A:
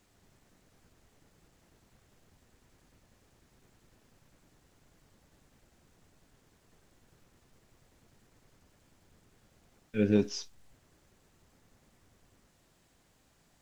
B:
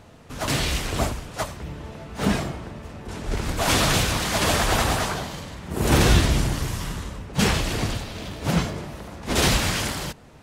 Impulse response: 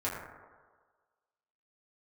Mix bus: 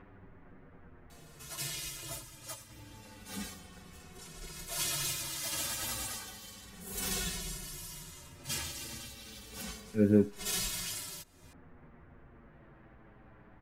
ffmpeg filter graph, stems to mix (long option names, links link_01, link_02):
-filter_complex "[0:a]lowpass=frequency=1900:width=0.5412,lowpass=frequency=1900:width=1.3066,volume=2dB[link_01];[1:a]crystalizer=i=5:c=0,asplit=2[link_02][link_03];[link_03]adelay=2.3,afreqshift=-0.33[link_04];[link_02][link_04]amix=inputs=2:normalize=1,adelay=1100,volume=-16.5dB[link_05];[link_01][link_05]amix=inputs=2:normalize=0,acompressor=mode=upward:threshold=-39dB:ratio=2.5,equalizer=frequency=700:width=1.5:gain=-2.5,asplit=2[link_06][link_07];[link_07]adelay=7.7,afreqshift=-0.28[link_08];[link_06][link_08]amix=inputs=2:normalize=1"